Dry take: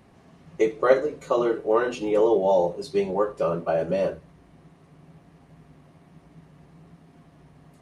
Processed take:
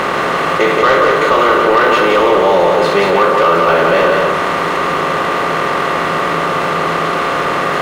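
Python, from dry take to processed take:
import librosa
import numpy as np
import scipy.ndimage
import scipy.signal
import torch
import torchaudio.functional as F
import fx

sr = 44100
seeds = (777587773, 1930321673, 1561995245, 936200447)

p1 = fx.bin_compress(x, sr, power=0.4)
p2 = fx.band_shelf(p1, sr, hz=1900.0, db=11.0, octaves=2.3)
p3 = fx.leveller(p2, sr, passes=2)
p4 = p3 + fx.echo_single(p3, sr, ms=177, db=-4.5, dry=0)
p5 = fx.env_flatten(p4, sr, amount_pct=50)
y = p5 * 10.0 ** (-5.0 / 20.0)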